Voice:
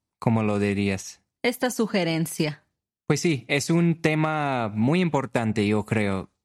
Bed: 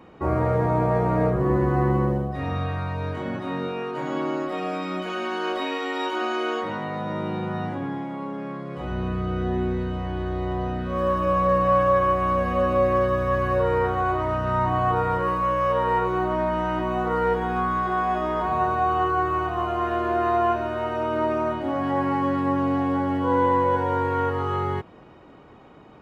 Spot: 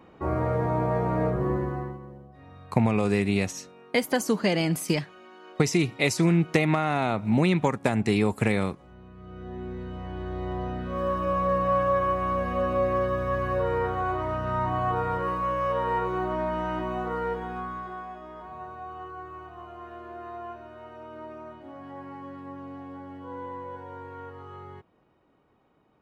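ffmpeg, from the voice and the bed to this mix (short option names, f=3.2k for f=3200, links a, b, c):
-filter_complex "[0:a]adelay=2500,volume=-0.5dB[a];[1:a]volume=12.5dB,afade=t=out:st=1.43:d=0.56:silence=0.141254,afade=t=in:st=9.14:d=1.39:silence=0.149624,afade=t=out:st=16.75:d=1.42:silence=0.223872[b];[a][b]amix=inputs=2:normalize=0"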